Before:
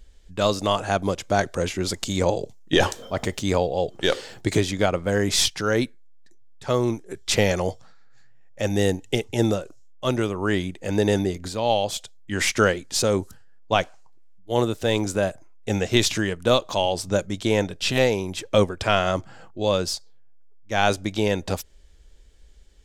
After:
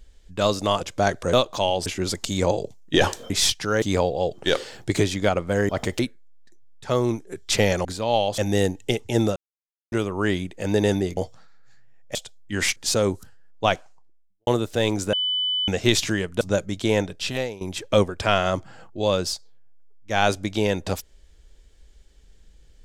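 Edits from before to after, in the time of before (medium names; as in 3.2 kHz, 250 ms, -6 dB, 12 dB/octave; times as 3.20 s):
0.81–1.13 s: delete
3.09–3.39 s: swap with 5.26–5.78 s
7.64–8.62 s: swap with 11.41–11.94 s
9.60–10.16 s: mute
12.55–12.84 s: delete
13.81–14.55 s: studio fade out
15.21–15.76 s: bleep 3 kHz -21 dBFS
16.49–17.02 s: move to 1.65 s
17.62–18.22 s: fade out, to -17.5 dB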